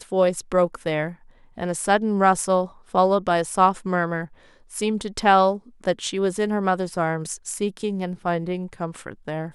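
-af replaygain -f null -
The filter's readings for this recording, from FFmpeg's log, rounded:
track_gain = +1.5 dB
track_peak = 0.436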